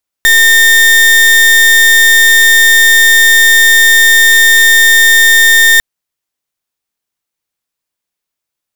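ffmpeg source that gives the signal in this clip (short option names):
-f lavfi -i "aevalsrc='0.531*(2*lt(mod(1820*t,1),0.36)-1)':d=5.55:s=44100"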